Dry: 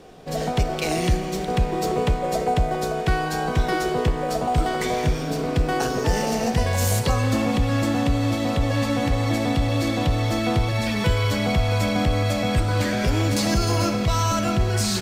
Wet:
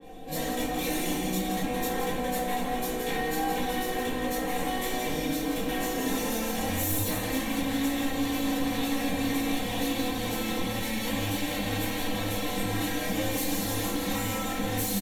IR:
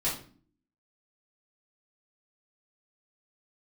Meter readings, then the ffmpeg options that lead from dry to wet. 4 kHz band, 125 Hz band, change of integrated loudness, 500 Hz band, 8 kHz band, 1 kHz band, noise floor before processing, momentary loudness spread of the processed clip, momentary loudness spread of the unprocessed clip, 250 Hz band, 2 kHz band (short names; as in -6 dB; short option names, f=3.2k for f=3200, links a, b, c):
-4.0 dB, -15.0 dB, -7.0 dB, -8.0 dB, -2.5 dB, -7.0 dB, -27 dBFS, 2 LU, 3 LU, -5.0 dB, -4.5 dB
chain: -filter_complex "[0:a]aeval=exprs='0.0944*(abs(mod(val(0)/0.0944+3,4)-2)-1)':c=same,aecho=1:1:3.8:0.87,aecho=1:1:170:0.447,flanger=delay=2.9:depth=1.4:regen=83:speed=0.16:shape=triangular,acrossover=split=83|960[a][b][c];[a]acompressor=threshold=-45dB:ratio=4[d];[b]acompressor=threshold=-32dB:ratio=4[e];[c]acompressor=threshold=-35dB:ratio=4[f];[d][e][f]amix=inputs=3:normalize=0,equalizer=f=1.25k:t=o:w=0.33:g=-10,equalizer=f=5k:t=o:w=0.33:g=-11,equalizer=f=12.5k:t=o:w=0.33:g=11[g];[1:a]atrim=start_sample=2205[h];[g][h]afir=irnorm=-1:irlink=0,adynamicequalizer=threshold=0.00562:dfrequency=3100:dqfactor=0.7:tfrequency=3100:tqfactor=0.7:attack=5:release=100:ratio=0.375:range=2:mode=boostabove:tftype=highshelf,volume=-5dB"